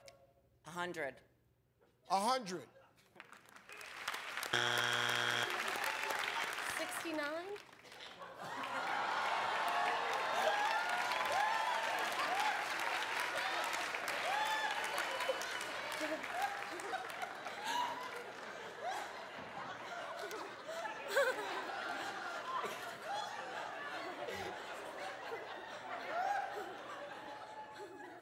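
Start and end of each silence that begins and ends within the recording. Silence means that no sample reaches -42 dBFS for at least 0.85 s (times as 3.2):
1.1–2.1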